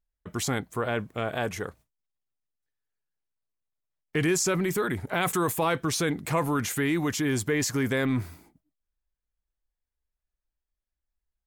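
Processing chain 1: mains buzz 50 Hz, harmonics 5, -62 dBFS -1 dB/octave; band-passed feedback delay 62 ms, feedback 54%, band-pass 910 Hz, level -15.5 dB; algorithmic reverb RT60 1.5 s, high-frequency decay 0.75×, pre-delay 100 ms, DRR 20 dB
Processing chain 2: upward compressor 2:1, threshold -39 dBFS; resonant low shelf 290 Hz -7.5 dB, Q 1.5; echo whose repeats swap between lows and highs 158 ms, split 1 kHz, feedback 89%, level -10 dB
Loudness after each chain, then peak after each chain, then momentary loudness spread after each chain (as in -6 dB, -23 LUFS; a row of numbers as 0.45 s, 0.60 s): -27.5 LUFS, -28.0 LUFS; -13.0 dBFS, -11.0 dBFS; 7 LU, 20 LU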